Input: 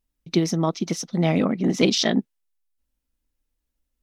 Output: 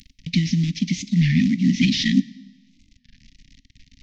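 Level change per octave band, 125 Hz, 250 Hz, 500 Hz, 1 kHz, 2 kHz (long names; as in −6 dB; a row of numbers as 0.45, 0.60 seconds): +5.5 dB, +3.5 dB, below −20 dB, below −40 dB, +3.0 dB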